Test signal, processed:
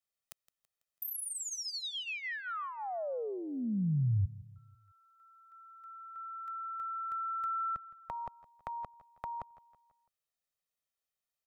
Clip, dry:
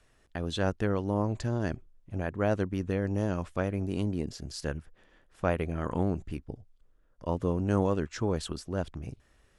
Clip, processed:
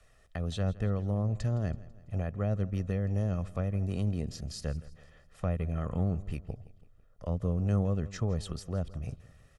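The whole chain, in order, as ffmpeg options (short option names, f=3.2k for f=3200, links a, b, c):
-filter_complex "[0:a]aecho=1:1:1.6:0.6,acrossover=split=300[a][b];[b]acompressor=threshold=-41dB:ratio=3[c];[a][c]amix=inputs=2:normalize=0,asplit=2[d][e];[e]aecho=0:1:165|330|495|660:0.112|0.055|0.0269|0.0132[f];[d][f]amix=inputs=2:normalize=0"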